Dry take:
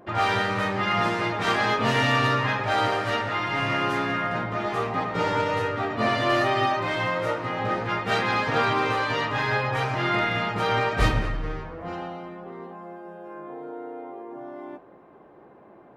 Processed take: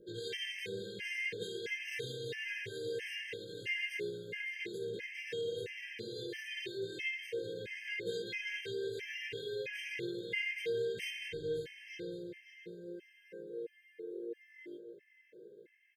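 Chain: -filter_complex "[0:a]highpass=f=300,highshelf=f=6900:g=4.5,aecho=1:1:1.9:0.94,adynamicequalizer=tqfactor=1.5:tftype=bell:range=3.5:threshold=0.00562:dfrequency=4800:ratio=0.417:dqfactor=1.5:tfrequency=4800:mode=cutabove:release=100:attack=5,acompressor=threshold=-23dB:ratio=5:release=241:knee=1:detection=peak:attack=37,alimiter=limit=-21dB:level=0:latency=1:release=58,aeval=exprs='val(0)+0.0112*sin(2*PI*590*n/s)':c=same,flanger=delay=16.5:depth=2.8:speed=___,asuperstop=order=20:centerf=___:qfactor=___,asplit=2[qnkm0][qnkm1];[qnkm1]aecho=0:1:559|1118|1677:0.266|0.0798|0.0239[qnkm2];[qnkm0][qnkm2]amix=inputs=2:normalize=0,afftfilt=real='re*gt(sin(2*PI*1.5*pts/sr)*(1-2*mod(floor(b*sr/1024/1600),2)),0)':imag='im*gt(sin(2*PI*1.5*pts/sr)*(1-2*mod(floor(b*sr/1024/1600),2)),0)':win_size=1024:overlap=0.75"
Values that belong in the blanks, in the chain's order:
0.48, 930, 0.74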